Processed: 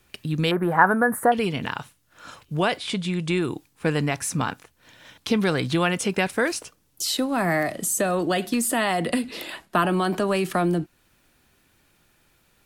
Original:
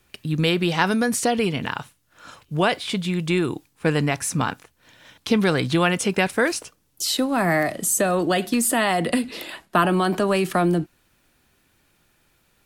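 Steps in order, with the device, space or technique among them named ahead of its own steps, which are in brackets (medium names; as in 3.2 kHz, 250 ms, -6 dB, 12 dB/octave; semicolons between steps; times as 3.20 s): 2.78–3.41 s: steep low-pass 11 kHz 48 dB/octave; de-esser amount 30%; 0.51–1.32 s: FFT filter 290 Hz 0 dB, 840 Hz +9 dB, 1.7 kHz +8 dB, 2.6 kHz -21 dB, 5.6 kHz -30 dB, 11 kHz +3 dB; parallel compression (in parallel at -4 dB: compression, threshold -32 dBFS, peak gain reduction 22.5 dB); on the sum: trim -3.5 dB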